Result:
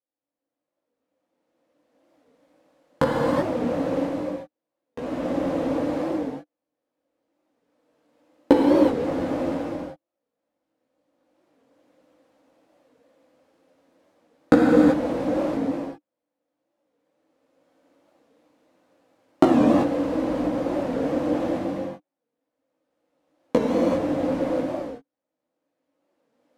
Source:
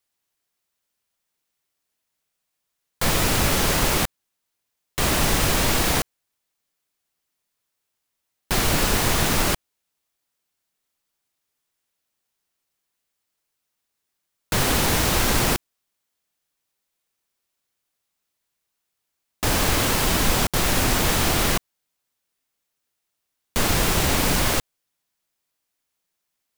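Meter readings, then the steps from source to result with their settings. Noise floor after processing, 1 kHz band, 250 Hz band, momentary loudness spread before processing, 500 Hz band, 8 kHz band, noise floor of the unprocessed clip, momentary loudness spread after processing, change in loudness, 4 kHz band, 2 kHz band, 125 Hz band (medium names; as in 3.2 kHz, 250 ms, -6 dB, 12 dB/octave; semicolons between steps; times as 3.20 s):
under -85 dBFS, -3.5 dB, +7.0 dB, 7 LU, +5.5 dB, under -25 dB, -80 dBFS, 15 LU, -2.5 dB, -19.0 dB, -11.0 dB, -8.5 dB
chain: recorder AGC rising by 14 dB/s; chorus voices 2, 0.22 Hz, delay 16 ms, depth 4.9 ms; two resonant band-passes 390 Hz, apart 0.77 oct; gated-style reverb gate 410 ms flat, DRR -4 dB; warped record 45 rpm, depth 160 cents; trim +6 dB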